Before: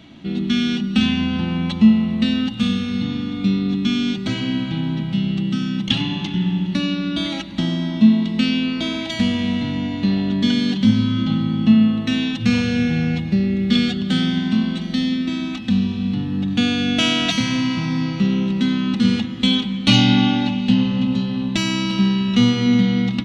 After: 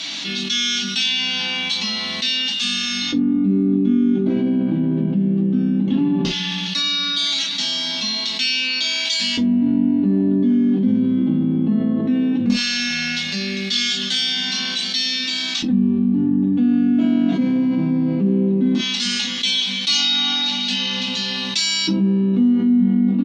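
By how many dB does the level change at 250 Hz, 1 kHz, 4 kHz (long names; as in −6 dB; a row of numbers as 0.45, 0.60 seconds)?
−0.5, −4.5, +5.5 decibels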